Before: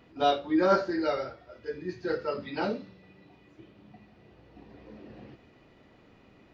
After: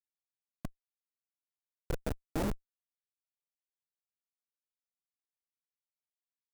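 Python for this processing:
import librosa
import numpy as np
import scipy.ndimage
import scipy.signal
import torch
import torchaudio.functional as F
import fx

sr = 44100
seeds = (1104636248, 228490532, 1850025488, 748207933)

y = fx.doppler_pass(x, sr, speed_mps=34, closest_m=12.0, pass_at_s=2.38)
y = fx.schmitt(y, sr, flips_db=-27.5)
y = fx.peak_eq(y, sr, hz=3100.0, db=-5.5, octaves=2.2)
y = y * 10.0 ** (11.0 / 20.0)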